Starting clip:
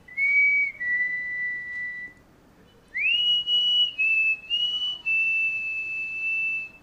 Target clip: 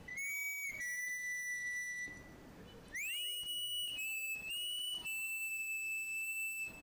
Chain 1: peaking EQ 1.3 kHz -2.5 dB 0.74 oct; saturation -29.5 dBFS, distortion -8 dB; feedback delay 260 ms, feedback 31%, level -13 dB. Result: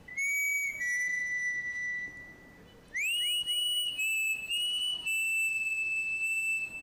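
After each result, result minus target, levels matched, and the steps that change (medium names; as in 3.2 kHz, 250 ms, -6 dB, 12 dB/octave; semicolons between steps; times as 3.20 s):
echo 111 ms late; saturation: distortion -4 dB
change: feedback delay 149 ms, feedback 31%, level -13 dB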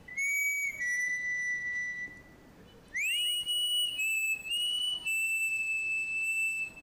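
saturation: distortion -4 dB
change: saturation -40.5 dBFS, distortion -4 dB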